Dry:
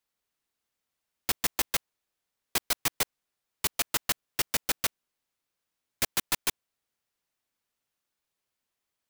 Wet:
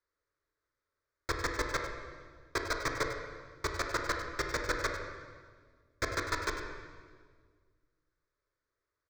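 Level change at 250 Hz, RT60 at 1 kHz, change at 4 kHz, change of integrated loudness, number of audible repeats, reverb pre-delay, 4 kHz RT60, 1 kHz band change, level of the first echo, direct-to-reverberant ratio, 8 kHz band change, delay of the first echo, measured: +1.0 dB, 1.5 s, -8.5 dB, -6.0 dB, 1, 18 ms, 1.5 s, +2.5 dB, -11.0 dB, 2.0 dB, -12.0 dB, 99 ms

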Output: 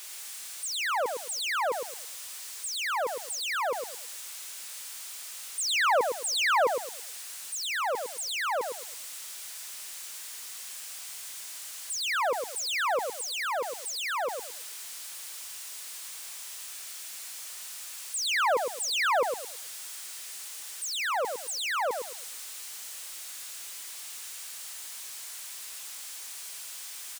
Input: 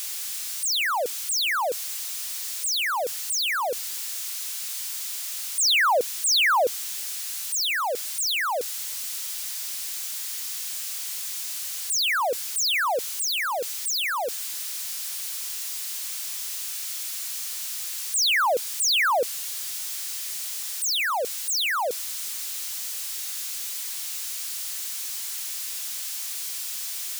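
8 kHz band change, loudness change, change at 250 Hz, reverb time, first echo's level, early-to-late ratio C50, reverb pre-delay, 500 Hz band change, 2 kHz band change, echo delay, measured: -7.5 dB, -6.5 dB, -1.5 dB, none, -6.0 dB, none, none, -2.0 dB, -5.0 dB, 0.11 s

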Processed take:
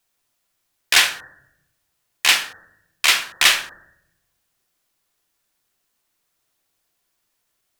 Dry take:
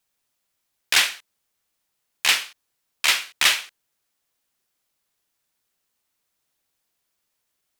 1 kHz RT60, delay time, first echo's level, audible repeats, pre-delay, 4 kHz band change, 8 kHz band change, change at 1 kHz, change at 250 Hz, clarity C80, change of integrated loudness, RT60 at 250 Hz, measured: 0.70 s, none, none, none, 3 ms, +3.5 dB, +3.5 dB, +4.5 dB, +5.0 dB, 18.5 dB, +3.5 dB, 1.2 s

